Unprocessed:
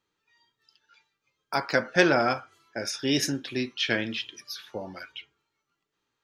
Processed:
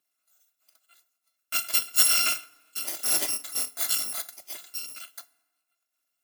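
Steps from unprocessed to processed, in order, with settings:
samples in bit-reversed order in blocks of 256 samples
high-pass filter 160 Hz 24 dB per octave
feedback delay network reverb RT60 1.2 s, low-frequency decay 0.95×, high-frequency decay 0.6×, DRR 20 dB
buffer that repeats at 0:00.95/0:05.13, samples 1,024, times 1

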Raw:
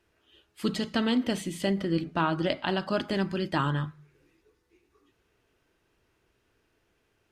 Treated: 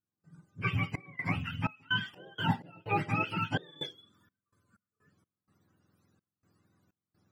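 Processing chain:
frequency axis turned over on the octave scale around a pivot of 710 Hz
gate pattern ".xxx.xx.x.x" 63 BPM −24 dB

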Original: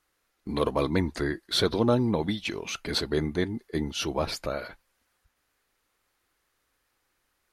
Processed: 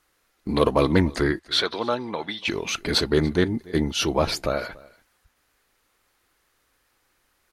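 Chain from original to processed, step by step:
0:01.39–0:02.48: resonant band-pass 2,100 Hz, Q 0.62
single-tap delay 287 ms −23 dB
highs frequency-modulated by the lows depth 0.12 ms
level +6.5 dB

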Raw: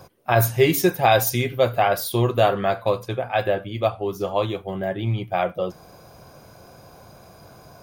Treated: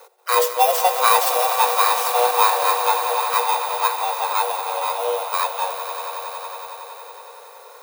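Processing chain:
samples in bit-reversed order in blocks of 16 samples
frequency shifter +370 Hz
echo that builds up and dies away 92 ms, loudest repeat 5, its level −12 dB
pitch-shifted copies added +4 semitones −13 dB

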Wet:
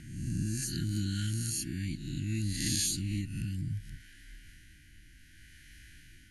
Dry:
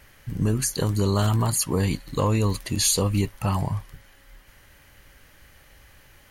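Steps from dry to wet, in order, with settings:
peak hold with a rise ahead of every peak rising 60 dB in 0.94 s
downward compressor 4 to 1, threshold −26 dBFS, peak gain reduction 10 dB
linear-phase brick-wall band-stop 360–1,400 Hz
rotating-speaker cabinet horn 0.65 Hz
linear-phase brick-wall low-pass 12,000 Hz
level −2.5 dB

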